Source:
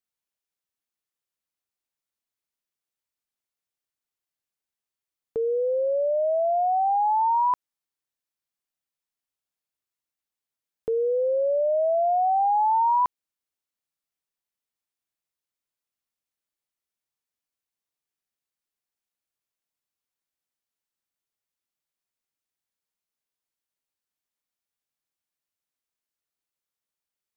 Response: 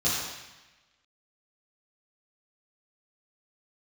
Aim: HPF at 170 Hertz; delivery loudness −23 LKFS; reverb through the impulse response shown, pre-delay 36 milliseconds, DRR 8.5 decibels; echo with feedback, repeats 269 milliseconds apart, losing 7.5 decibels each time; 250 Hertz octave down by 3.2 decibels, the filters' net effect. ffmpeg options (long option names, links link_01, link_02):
-filter_complex "[0:a]highpass=170,equalizer=frequency=250:width_type=o:gain=-4,aecho=1:1:269|538|807|1076|1345:0.422|0.177|0.0744|0.0312|0.0131,asplit=2[link_01][link_02];[1:a]atrim=start_sample=2205,adelay=36[link_03];[link_02][link_03]afir=irnorm=-1:irlink=0,volume=-20dB[link_04];[link_01][link_04]amix=inputs=2:normalize=0,volume=-0.5dB"